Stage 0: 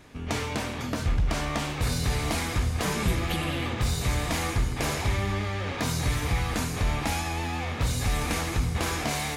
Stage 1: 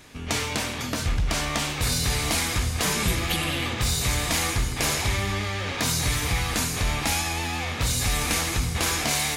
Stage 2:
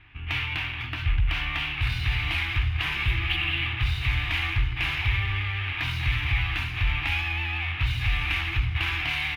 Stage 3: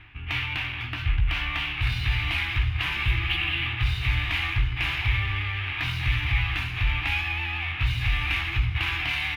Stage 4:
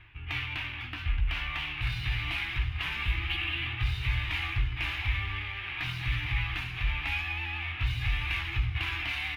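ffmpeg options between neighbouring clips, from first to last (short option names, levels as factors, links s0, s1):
-af "highshelf=f=2100:g=9.5"
-af "adynamicsmooth=sensitivity=7:basefreq=2500,firequalizer=gain_entry='entry(120,0);entry(190,-24);entry(330,-9);entry(500,-30);entry(750,-10);entry(2700,5);entry(4300,-15);entry(7200,-30);entry(12000,-16)':delay=0.05:min_phase=1,volume=1.19"
-filter_complex "[0:a]areverse,acompressor=mode=upward:threshold=0.0282:ratio=2.5,areverse,asplit=2[s0][s1];[s1]adelay=17,volume=0.282[s2];[s0][s2]amix=inputs=2:normalize=0"
-af "flanger=delay=1.8:depth=4.6:regen=-50:speed=0.24:shape=triangular,volume=0.841"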